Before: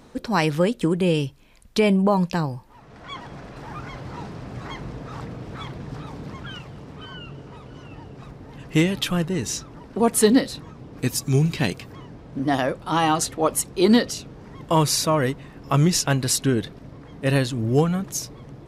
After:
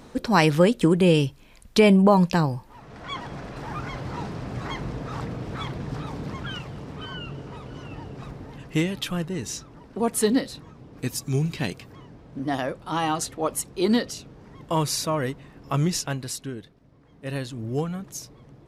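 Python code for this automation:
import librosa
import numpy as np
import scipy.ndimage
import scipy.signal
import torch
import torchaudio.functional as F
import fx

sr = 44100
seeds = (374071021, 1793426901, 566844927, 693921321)

y = fx.gain(x, sr, db=fx.line((8.4, 2.5), (8.81, -5.0), (15.9, -5.0), (16.77, -17.0), (17.55, -8.0)))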